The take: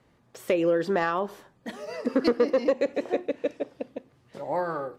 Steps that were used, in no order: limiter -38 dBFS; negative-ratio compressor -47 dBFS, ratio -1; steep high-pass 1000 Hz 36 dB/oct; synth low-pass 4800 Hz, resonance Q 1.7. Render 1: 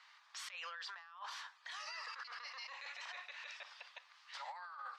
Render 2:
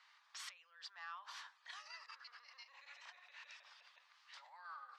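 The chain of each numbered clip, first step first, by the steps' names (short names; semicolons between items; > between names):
steep high-pass > negative-ratio compressor > synth low-pass > limiter; synth low-pass > limiter > negative-ratio compressor > steep high-pass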